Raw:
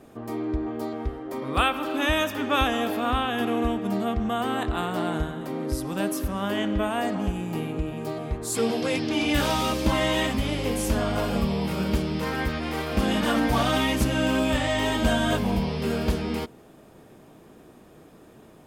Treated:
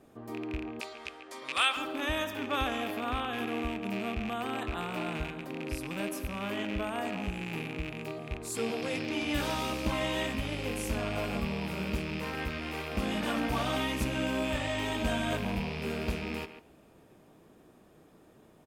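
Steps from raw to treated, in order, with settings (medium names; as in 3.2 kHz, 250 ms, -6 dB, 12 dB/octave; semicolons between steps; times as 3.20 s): rattle on loud lows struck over -32 dBFS, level -20 dBFS; 0.80–1.77 s: frequency weighting ITU-R 468; speakerphone echo 140 ms, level -10 dB; reverberation, pre-delay 3 ms, DRR 17.5 dB; trim -8.5 dB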